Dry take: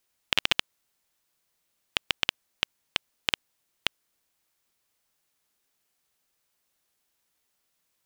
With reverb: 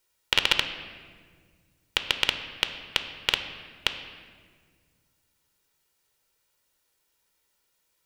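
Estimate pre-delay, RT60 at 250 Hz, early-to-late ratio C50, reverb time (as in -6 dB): 3 ms, 2.5 s, 9.0 dB, 1.7 s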